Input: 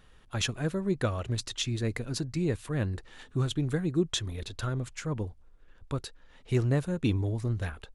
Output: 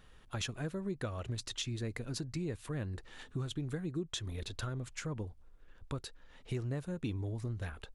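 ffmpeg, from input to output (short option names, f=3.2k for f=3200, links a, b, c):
-af "acompressor=threshold=-35dB:ratio=3,volume=-1.5dB"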